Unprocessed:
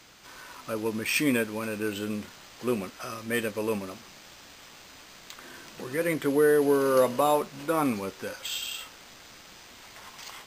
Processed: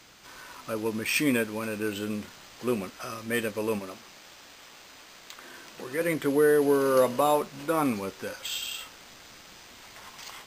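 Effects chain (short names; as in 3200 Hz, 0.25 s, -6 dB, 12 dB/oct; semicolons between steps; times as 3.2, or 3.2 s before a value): 3.79–6.01 tone controls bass -6 dB, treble -1 dB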